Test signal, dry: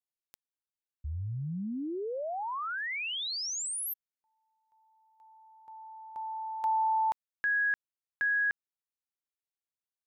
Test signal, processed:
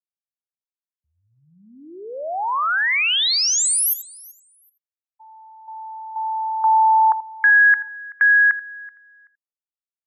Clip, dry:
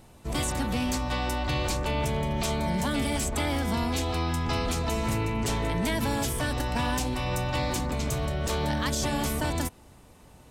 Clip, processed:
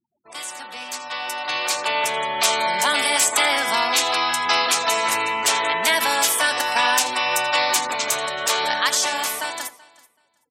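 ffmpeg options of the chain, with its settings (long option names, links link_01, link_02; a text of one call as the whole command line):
ffmpeg -i in.wav -filter_complex "[0:a]asplit=2[link_01][link_02];[link_02]aecho=0:1:83:0.224[link_03];[link_01][link_03]amix=inputs=2:normalize=0,afftfilt=real='re*gte(hypot(re,im),0.00794)':imag='im*gte(hypot(re,im),0.00794)':win_size=1024:overlap=0.75,highpass=920,dynaudnorm=framelen=260:gausssize=13:maxgain=16dB,asplit=2[link_04][link_05];[link_05]aecho=0:1:380|760:0.075|0.0135[link_06];[link_04][link_06]amix=inputs=2:normalize=0" out.wav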